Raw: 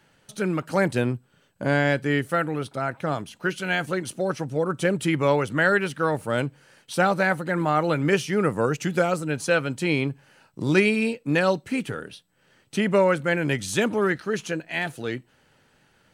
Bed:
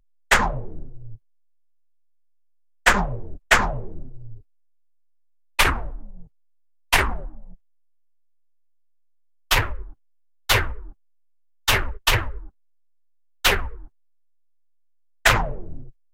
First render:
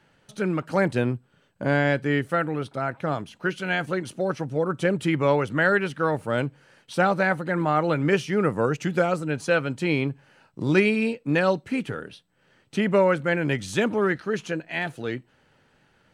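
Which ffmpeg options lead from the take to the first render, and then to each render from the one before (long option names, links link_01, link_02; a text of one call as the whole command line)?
ffmpeg -i in.wav -af "lowpass=frequency=3800:poles=1" out.wav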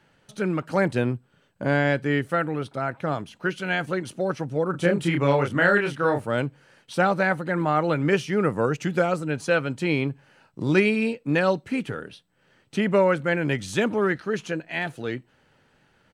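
ffmpeg -i in.wav -filter_complex "[0:a]asplit=3[link_01][link_02][link_03];[link_01]afade=type=out:start_time=4.73:duration=0.02[link_04];[link_02]asplit=2[link_05][link_06];[link_06]adelay=29,volume=-3.5dB[link_07];[link_05][link_07]amix=inputs=2:normalize=0,afade=type=in:start_time=4.73:duration=0.02,afade=type=out:start_time=6.24:duration=0.02[link_08];[link_03]afade=type=in:start_time=6.24:duration=0.02[link_09];[link_04][link_08][link_09]amix=inputs=3:normalize=0" out.wav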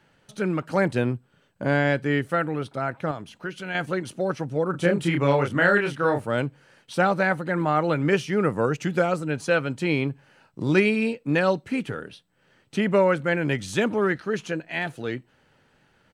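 ffmpeg -i in.wav -filter_complex "[0:a]asettb=1/sr,asplit=3[link_01][link_02][link_03];[link_01]atrim=end=3.114[link_04];[link_02]atrim=start=3.11:end=3.75,asetpts=PTS-STARTPTS,afade=type=in:duration=0.004:curve=qsin,afade=type=out:start_time=0.636:duration=0.004:curve=qsin,acompressor=threshold=-38dB:ratio=1.5:attack=3.2:release=140:knee=1:detection=peak[link_05];[link_03]atrim=start=3.746[link_06];[link_04][link_05]acrossfade=duration=0.004:curve1=hsin:curve2=qsin[link_07];[link_07][link_06]acrossfade=duration=0.004:curve1=qsin:curve2=hsin" out.wav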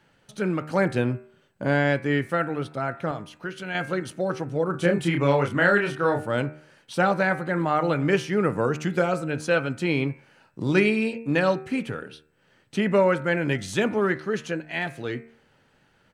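ffmpeg -i in.wav -af "bandreject=frequency=76.31:width_type=h:width=4,bandreject=frequency=152.62:width_type=h:width=4,bandreject=frequency=228.93:width_type=h:width=4,bandreject=frequency=305.24:width_type=h:width=4,bandreject=frequency=381.55:width_type=h:width=4,bandreject=frequency=457.86:width_type=h:width=4,bandreject=frequency=534.17:width_type=h:width=4,bandreject=frequency=610.48:width_type=h:width=4,bandreject=frequency=686.79:width_type=h:width=4,bandreject=frequency=763.1:width_type=h:width=4,bandreject=frequency=839.41:width_type=h:width=4,bandreject=frequency=915.72:width_type=h:width=4,bandreject=frequency=992.03:width_type=h:width=4,bandreject=frequency=1068.34:width_type=h:width=4,bandreject=frequency=1144.65:width_type=h:width=4,bandreject=frequency=1220.96:width_type=h:width=4,bandreject=frequency=1297.27:width_type=h:width=4,bandreject=frequency=1373.58:width_type=h:width=4,bandreject=frequency=1449.89:width_type=h:width=4,bandreject=frequency=1526.2:width_type=h:width=4,bandreject=frequency=1602.51:width_type=h:width=4,bandreject=frequency=1678.82:width_type=h:width=4,bandreject=frequency=1755.13:width_type=h:width=4,bandreject=frequency=1831.44:width_type=h:width=4,bandreject=frequency=1907.75:width_type=h:width=4,bandreject=frequency=1984.06:width_type=h:width=4,bandreject=frequency=2060.37:width_type=h:width=4,bandreject=frequency=2136.68:width_type=h:width=4,bandreject=frequency=2212.99:width_type=h:width=4,bandreject=frequency=2289.3:width_type=h:width=4,bandreject=frequency=2365.61:width_type=h:width=4,bandreject=frequency=2441.92:width_type=h:width=4,bandreject=frequency=2518.23:width_type=h:width=4,bandreject=frequency=2594.54:width_type=h:width=4,bandreject=frequency=2670.85:width_type=h:width=4" out.wav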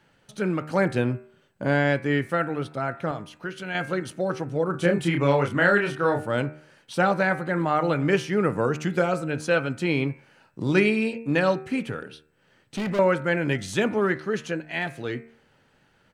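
ffmpeg -i in.wav -filter_complex "[0:a]asettb=1/sr,asplit=3[link_01][link_02][link_03];[link_01]atrim=end=12.024[link_04];[link_02]atrim=start=12.02:end=12.99,asetpts=PTS-STARTPTS,afade=type=in:duration=0.004:curve=qsin,afade=type=out:start_time=0.966:duration=0.004:curve=qsin,asoftclip=type=hard:threshold=-25dB[link_05];[link_03]atrim=start=12.986[link_06];[link_04][link_05]acrossfade=duration=0.004:curve1=hsin:curve2=qsin[link_07];[link_07][link_06]acrossfade=duration=0.004:curve1=qsin:curve2=hsin" out.wav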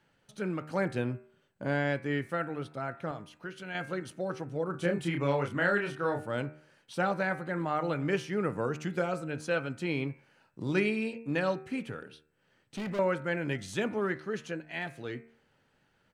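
ffmpeg -i in.wav -af "volume=-8dB" out.wav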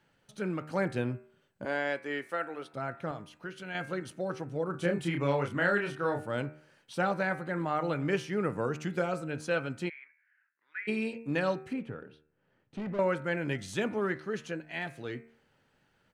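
ffmpeg -i in.wav -filter_complex "[0:a]asettb=1/sr,asplit=3[link_01][link_02][link_03];[link_01]atrim=end=1.654[link_04];[link_02]atrim=start=1.65:end=2.74,asetpts=PTS-STARTPTS,afade=type=in:duration=0.004:curve=qsin,afade=type=out:start_time=1.086:duration=0.004:curve=qsin,highpass=390[link_05];[link_03]atrim=start=2.736[link_06];[link_04][link_05]acrossfade=duration=0.004:curve1=hsin:curve2=qsin[link_07];[link_07][link_06]acrossfade=duration=0.004:curve1=qsin:curve2=hsin,asplit=3[link_08][link_09][link_10];[link_08]afade=type=out:start_time=9.88:duration=0.02[link_11];[link_09]asuperpass=centerf=1800:order=4:qfactor=3.3,afade=type=in:start_time=9.88:duration=0.02,afade=type=out:start_time=10.87:duration=0.02[link_12];[link_10]afade=type=in:start_time=10.87:duration=0.02[link_13];[link_11][link_12][link_13]amix=inputs=3:normalize=0,asettb=1/sr,asplit=3[link_14][link_15][link_16];[link_14]atrim=end=11.734[link_17];[link_15]atrim=start=11.73:end=12.99,asetpts=PTS-STARTPTS,afade=type=in:duration=0.004:curve=qsin,afade=type=out:start_time=1.256:duration=0.004:curve=qsin,lowpass=frequency=1100:poles=1[link_18];[link_16]atrim=start=12.986[link_19];[link_17][link_18]acrossfade=duration=0.004:curve1=hsin:curve2=qsin[link_20];[link_20][link_19]acrossfade=duration=0.004:curve1=qsin:curve2=hsin" out.wav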